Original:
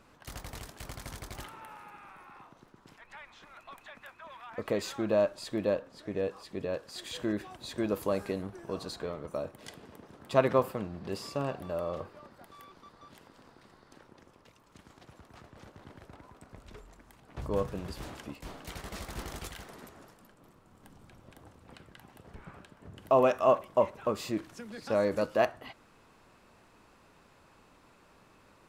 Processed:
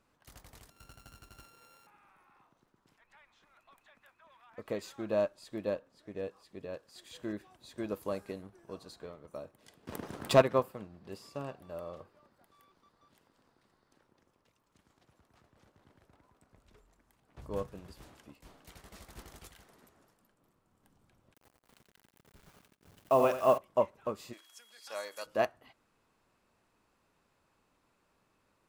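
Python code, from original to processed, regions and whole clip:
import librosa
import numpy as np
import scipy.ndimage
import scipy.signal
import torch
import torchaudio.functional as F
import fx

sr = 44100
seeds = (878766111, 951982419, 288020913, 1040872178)

y = fx.chain(x, sr, fx.sample_sort(block=32),
    fx.doppler_dist(depth_ms=0.12), at=(0.7, 1.87))
y = fx.chain(y, sr, fx.leveller(passes=1),
    fx.env_flatten(amount_pct=50), at=(9.87, 10.42))
y = fx.chain(y, sr, fx.quant_dither(seeds[0], bits=8, dither='none'),
    fx.echo_feedback(ms=89, feedback_pct=20, wet_db=-7.0), at=(21.34, 23.58))
y = fx.highpass(y, sr, hz=800.0, slope=12, at=(24.32, 25.25), fade=0.02)
y = fx.high_shelf(y, sr, hz=3100.0, db=11.0, at=(24.32, 25.25), fade=0.02)
y = fx.dmg_tone(y, sr, hz=3300.0, level_db=-50.0, at=(24.32, 25.25), fade=0.02)
y = fx.high_shelf(y, sr, hz=7400.0, db=5.0)
y = fx.upward_expand(y, sr, threshold_db=-43.0, expansion=1.5)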